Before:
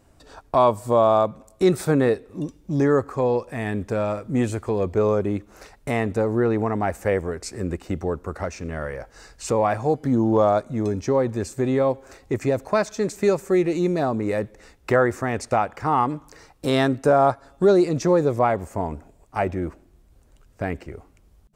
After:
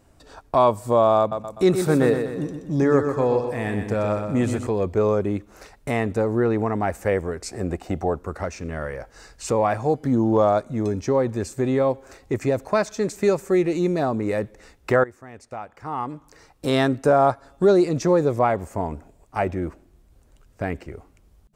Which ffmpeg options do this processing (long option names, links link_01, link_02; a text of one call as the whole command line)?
ffmpeg -i in.wav -filter_complex "[0:a]asettb=1/sr,asplit=3[link_01][link_02][link_03];[link_01]atrim=end=1.194[link_04];[link_02]atrim=start=1.19:end=4.67,asetpts=PTS-STARTPTS,afade=type=in:duration=0.004:curve=qsin,afade=type=out:start_time=3.476:duration=0.004:curve=qsin,aecho=1:1:125|250|375|500|625|750:0.447|0.214|0.103|0.0494|0.0237|0.0114,atrim=end_sample=153468[link_05];[link_03]atrim=start=4.666[link_06];[link_04][link_05]acrossfade=duration=0.004:curve1=hsin:curve2=qsin[link_07];[link_07][link_06]acrossfade=duration=0.004:curve1=qsin:curve2=hsin,asettb=1/sr,asplit=3[link_08][link_09][link_10];[link_08]atrim=end=7.494[link_11];[link_09]atrim=start=7.49:end=8.18,asetpts=PTS-STARTPTS,afade=type=in:duration=0.004:curve=qsin,afade=type=out:start_time=0.686:duration=0.004:curve=qsin,equalizer=frequency=720:width=3.1:gain=12[link_12];[link_10]atrim=start=8.176[link_13];[link_11][link_12]acrossfade=duration=0.004:curve1=hsin:curve2=qsin[link_14];[link_14][link_13]acrossfade=duration=0.004:curve1=qsin:curve2=hsin,asplit=2[link_15][link_16];[link_15]atrim=end=15.04,asetpts=PTS-STARTPTS,afade=type=out:start_time=15.036:duration=0.004:curve=hsin:silence=0.125893[link_17];[link_16]atrim=start=15.04,asetpts=PTS-STARTPTS,afade=type=in:duration=1.69:curve=qua:silence=0.125893[link_18];[link_17][link_18]concat=n=2:v=0:a=1" out.wav